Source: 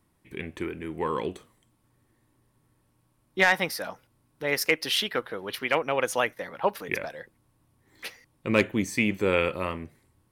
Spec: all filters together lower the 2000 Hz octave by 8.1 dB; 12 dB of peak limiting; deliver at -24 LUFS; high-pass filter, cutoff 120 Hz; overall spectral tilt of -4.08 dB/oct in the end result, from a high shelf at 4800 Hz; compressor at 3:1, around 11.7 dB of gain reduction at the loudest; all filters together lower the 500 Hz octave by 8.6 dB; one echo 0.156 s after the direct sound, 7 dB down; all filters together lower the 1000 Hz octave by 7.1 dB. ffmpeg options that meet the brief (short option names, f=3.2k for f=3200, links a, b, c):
-af "highpass=120,equalizer=f=500:t=o:g=-9,equalizer=f=1k:t=o:g=-4,equalizer=f=2k:t=o:g=-7,highshelf=f=4.8k:g=-7,acompressor=threshold=-40dB:ratio=3,alimiter=level_in=11dB:limit=-24dB:level=0:latency=1,volume=-11dB,aecho=1:1:156:0.447,volume=22.5dB"